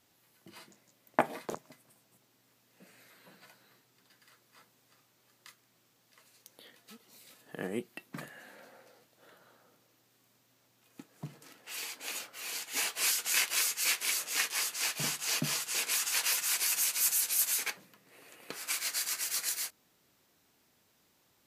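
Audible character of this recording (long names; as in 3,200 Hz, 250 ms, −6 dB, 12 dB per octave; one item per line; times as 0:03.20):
background noise floor −70 dBFS
spectral slope −0.5 dB per octave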